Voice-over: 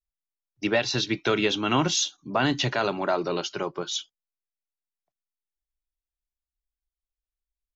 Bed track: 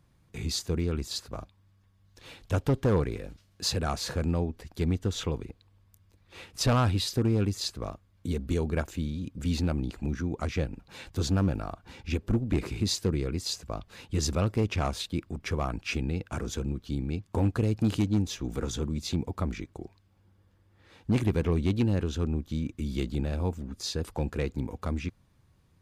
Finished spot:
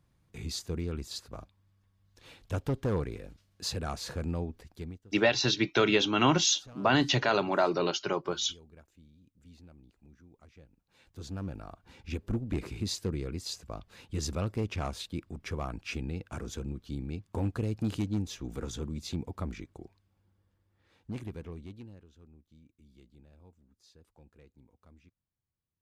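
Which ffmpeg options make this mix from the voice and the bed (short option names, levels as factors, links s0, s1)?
-filter_complex "[0:a]adelay=4500,volume=0.891[s0];[1:a]volume=5.96,afade=t=out:st=4.56:d=0.46:silence=0.0891251,afade=t=in:st=10.8:d=1.45:silence=0.0891251,afade=t=out:st=19.62:d=2.42:silence=0.0749894[s1];[s0][s1]amix=inputs=2:normalize=0"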